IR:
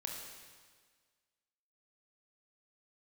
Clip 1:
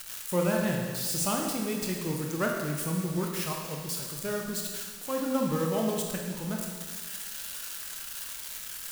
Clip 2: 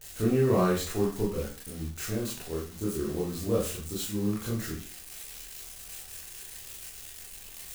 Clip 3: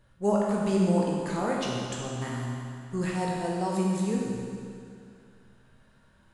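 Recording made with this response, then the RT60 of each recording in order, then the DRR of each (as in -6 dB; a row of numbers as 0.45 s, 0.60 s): 1; 1.6 s, 0.40 s, 2.4 s; 0.0 dB, -6.0 dB, -3.5 dB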